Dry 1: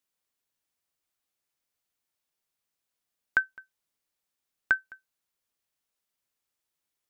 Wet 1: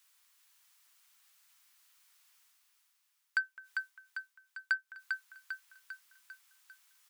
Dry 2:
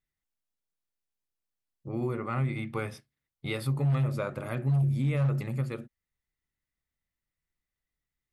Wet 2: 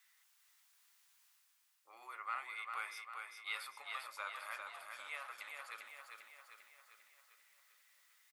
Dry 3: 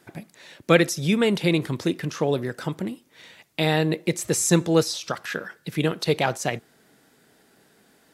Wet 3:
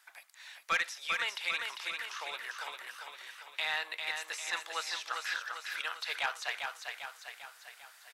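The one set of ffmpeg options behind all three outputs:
-filter_complex "[0:a]acrossover=split=4000[s0][s1];[s1]acompressor=threshold=0.00501:ratio=4:attack=1:release=60[s2];[s0][s2]amix=inputs=2:normalize=0,highpass=f=1000:w=0.5412,highpass=f=1000:w=1.3066,areverse,acompressor=mode=upward:threshold=0.00398:ratio=2.5,areverse,asoftclip=type=tanh:threshold=0.126,aecho=1:1:398|796|1194|1592|1990|2388|2786:0.562|0.304|0.164|0.0885|0.0478|0.0258|0.0139,volume=0.668"

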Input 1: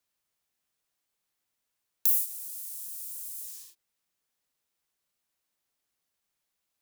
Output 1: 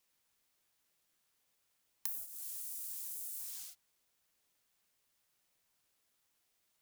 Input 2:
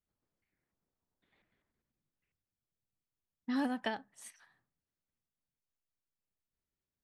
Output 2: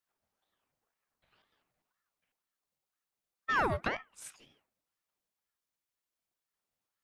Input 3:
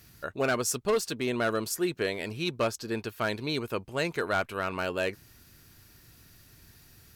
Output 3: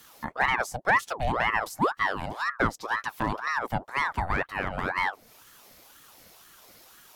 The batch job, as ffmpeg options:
-filter_complex "[0:a]highpass=160,acrossover=split=270|1000[s0][s1][s2];[s2]acompressor=threshold=0.00562:ratio=5[s3];[s0][s1][s3]amix=inputs=3:normalize=0,aeval=exprs='val(0)*sin(2*PI*950*n/s+950*0.65/2*sin(2*PI*2*n/s))':c=same,volume=2.24"

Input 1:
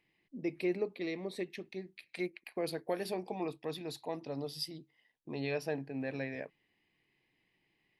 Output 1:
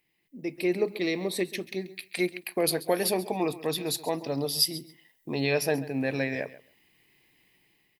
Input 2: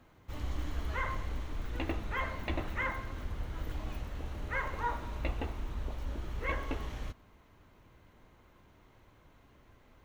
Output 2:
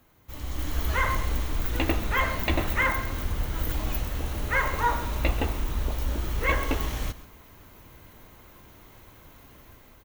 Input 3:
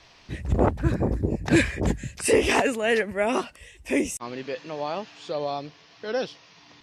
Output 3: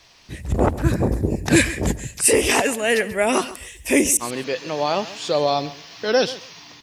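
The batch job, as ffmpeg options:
-filter_complex "[0:a]aemphasis=mode=production:type=50fm,asplit=2[s0][s1];[s1]aecho=0:1:135|270:0.141|0.0212[s2];[s0][s2]amix=inputs=2:normalize=0,dynaudnorm=f=180:g=7:m=3.35,volume=0.891"

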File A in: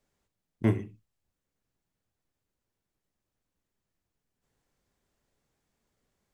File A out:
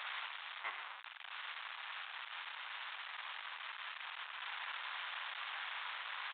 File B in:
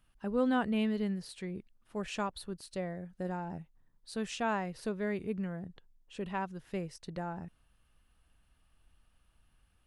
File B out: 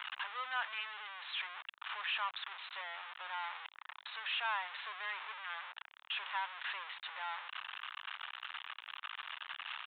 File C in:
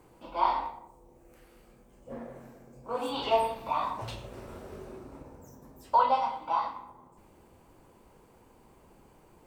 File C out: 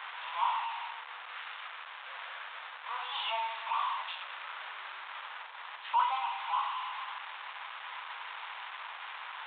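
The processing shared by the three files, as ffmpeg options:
-af "aeval=exprs='val(0)+0.5*0.0473*sgn(val(0))':c=same,asuperpass=centerf=2300:order=8:qfactor=0.52,aresample=8000,aresample=44100,volume=0.668"

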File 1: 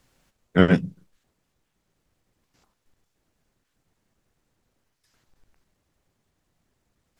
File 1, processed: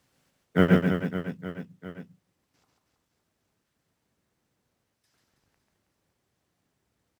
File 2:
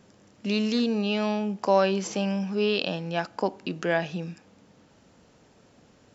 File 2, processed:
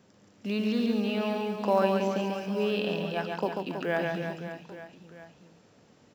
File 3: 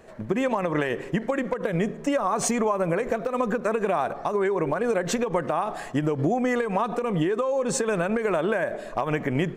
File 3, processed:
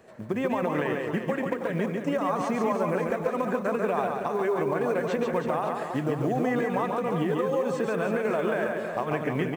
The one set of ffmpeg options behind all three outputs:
-filter_complex "[0:a]highpass=77,bandreject=f=6900:w=27,acrossover=split=3400[s0][s1];[s1]acompressor=threshold=0.00355:ratio=4:attack=1:release=60[s2];[s0][s2]amix=inputs=2:normalize=0,acrusher=bits=9:mode=log:mix=0:aa=0.000001,aecho=1:1:140|322|558.6|866.2|1266:0.631|0.398|0.251|0.158|0.1,volume=0.631"

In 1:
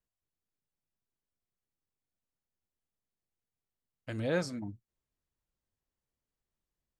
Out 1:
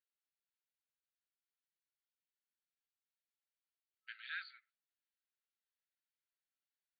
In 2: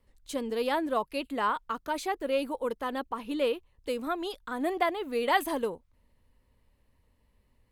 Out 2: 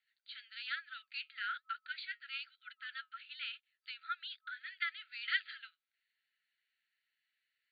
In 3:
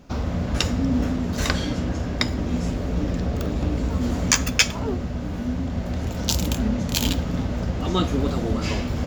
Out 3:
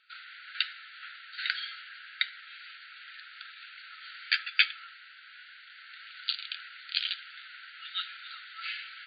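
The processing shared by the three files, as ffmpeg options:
-af "afftfilt=real='re*between(b*sr/4096,1300,4700)':imag='im*between(b*sr/4096,1300,4700)':win_size=4096:overlap=0.75,flanger=delay=2.9:depth=3.8:regen=-73:speed=1.1:shape=sinusoidal,volume=1.19"

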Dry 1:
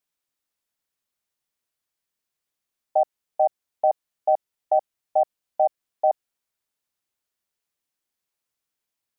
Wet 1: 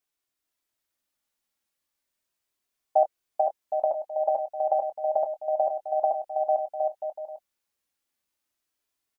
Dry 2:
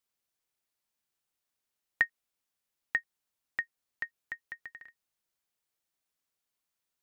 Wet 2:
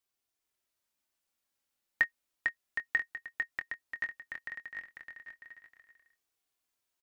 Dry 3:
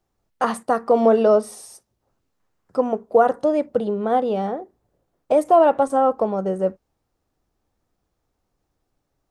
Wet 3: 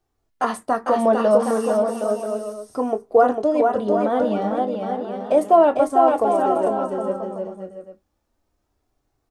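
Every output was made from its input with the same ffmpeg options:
-filter_complex "[0:a]asplit=2[s0][s1];[s1]adelay=24,volume=0.251[s2];[s0][s2]amix=inputs=2:normalize=0,aecho=1:1:450|765|985.5|1140|1248:0.631|0.398|0.251|0.158|0.1,flanger=delay=2.6:depth=1.1:regen=-45:speed=0.32:shape=triangular,volume=1.41"

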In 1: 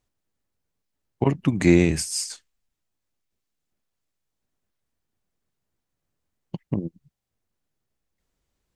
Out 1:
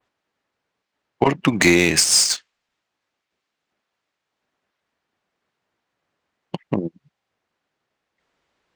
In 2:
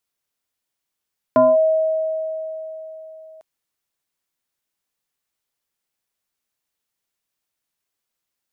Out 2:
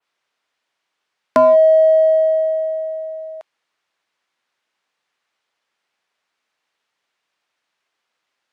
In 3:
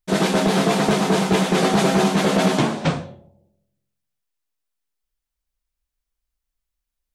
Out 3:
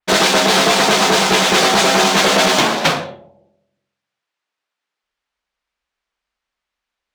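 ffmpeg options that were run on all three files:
-af "highpass=f=960:p=1,adynamicequalizer=threshold=0.00891:dfrequency=5700:dqfactor=0.74:tfrequency=5700:tqfactor=0.74:attack=5:release=100:ratio=0.375:range=2:mode=boostabove:tftype=bell,acompressor=threshold=0.0501:ratio=4,apsyclip=12.6,adynamicsmooth=sensitivity=1:basefreq=3200,volume=0.531"

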